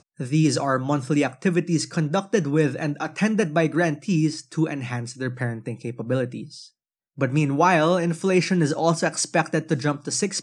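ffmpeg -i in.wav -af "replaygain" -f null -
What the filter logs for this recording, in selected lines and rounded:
track_gain = +3.4 dB
track_peak = 0.335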